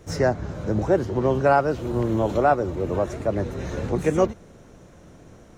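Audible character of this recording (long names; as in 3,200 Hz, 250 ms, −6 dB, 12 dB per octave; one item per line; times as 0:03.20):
background noise floor −49 dBFS
spectral slope −4.5 dB per octave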